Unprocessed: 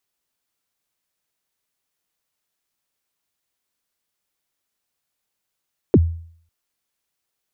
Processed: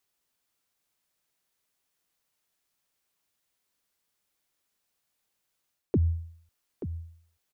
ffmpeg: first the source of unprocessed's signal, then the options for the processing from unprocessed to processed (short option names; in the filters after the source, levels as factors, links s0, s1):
-f lavfi -i "aevalsrc='0.501*pow(10,-3*t/0.56)*sin(2*PI*(480*0.044/log(83/480)*(exp(log(83/480)*min(t,0.044)/0.044)-1)+83*max(t-0.044,0)))':d=0.55:s=44100"
-af "areverse,acompressor=threshold=0.0708:ratio=6,areverse,aecho=1:1:882:0.282"